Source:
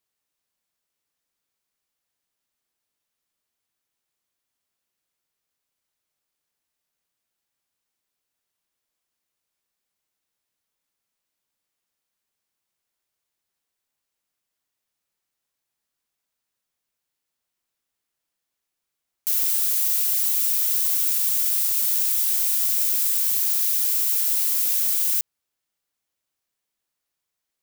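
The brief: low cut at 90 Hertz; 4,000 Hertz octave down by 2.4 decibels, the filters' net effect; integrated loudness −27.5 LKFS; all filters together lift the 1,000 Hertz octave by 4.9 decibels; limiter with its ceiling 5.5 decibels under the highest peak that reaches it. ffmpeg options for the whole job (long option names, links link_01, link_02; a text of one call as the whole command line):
ffmpeg -i in.wav -af "highpass=90,equalizer=frequency=1000:width_type=o:gain=6.5,equalizer=frequency=4000:width_type=o:gain=-3.5,volume=-6.5dB,alimiter=limit=-20.5dB:level=0:latency=1" out.wav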